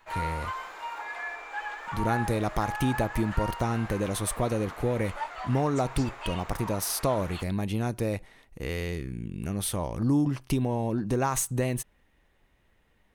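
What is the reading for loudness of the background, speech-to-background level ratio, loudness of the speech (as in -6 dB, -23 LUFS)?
-37.5 LUFS, 8.0 dB, -29.5 LUFS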